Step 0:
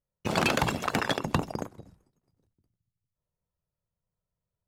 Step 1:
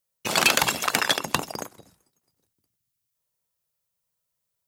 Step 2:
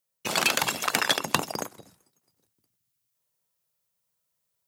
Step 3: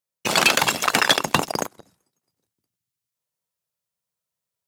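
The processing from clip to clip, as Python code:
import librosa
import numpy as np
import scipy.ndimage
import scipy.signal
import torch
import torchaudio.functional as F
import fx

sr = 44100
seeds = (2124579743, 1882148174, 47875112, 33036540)

y1 = fx.tilt_eq(x, sr, slope=3.5)
y1 = y1 * librosa.db_to_amplitude(3.5)
y2 = scipy.signal.sosfilt(scipy.signal.butter(2, 92.0, 'highpass', fs=sr, output='sos'), y1)
y2 = fx.rider(y2, sr, range_db=4, speed_s=0.5)
y2 = y2 * librosa.db_to_amplitude(-2.5)
y3 = fx.leveller(y2, sr, passes=2)
y3 = fx.high_shelf(y3, sr, hz=12000.0, db=-6.0)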